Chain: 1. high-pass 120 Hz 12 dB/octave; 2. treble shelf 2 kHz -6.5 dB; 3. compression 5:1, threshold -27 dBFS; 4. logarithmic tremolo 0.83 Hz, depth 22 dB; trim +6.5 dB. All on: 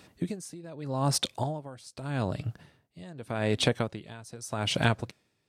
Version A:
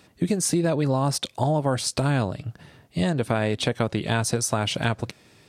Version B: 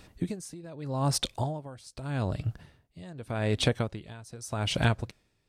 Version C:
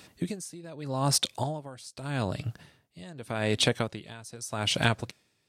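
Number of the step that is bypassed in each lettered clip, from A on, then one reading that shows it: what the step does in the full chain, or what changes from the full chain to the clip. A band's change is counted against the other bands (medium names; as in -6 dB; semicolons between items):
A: 4, momentary loudness spread change -9 LU; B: 1, 125 Hz band +3.0 dB; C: 2, 8 kHz band +4.0 dB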